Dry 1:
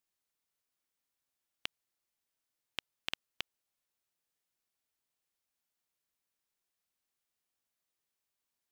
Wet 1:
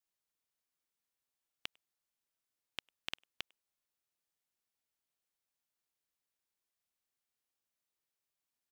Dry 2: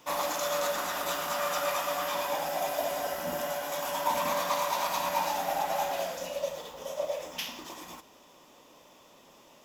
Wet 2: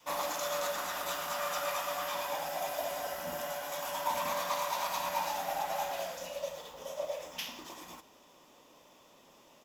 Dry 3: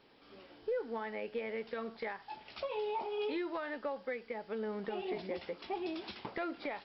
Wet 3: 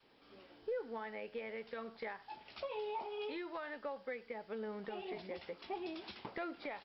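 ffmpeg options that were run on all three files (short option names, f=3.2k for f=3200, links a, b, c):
-filter_complex "[0:a]adynamicequalizer=threshold=0.00447:dfrequency=300:dqfactor=0.93:tfrequency=300:tqfactor=0.93:attack=5:release=100:ratio=0.375:range=2.5:mode=cutabove:tftype=bell,asplit=2[a][b];[b]adelay=100,highpass=300,lowpass=3.4k,asoftclip=type=hard:threshold=-24.5dB,volume=-26dB[c];[a][c]amix=inputs=2:normalize=0,volume=-3.5dB"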